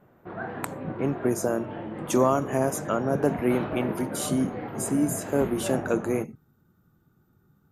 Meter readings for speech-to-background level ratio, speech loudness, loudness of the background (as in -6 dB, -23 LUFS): 8.0 dB, -27.5 LUFS, -35.5 LUFS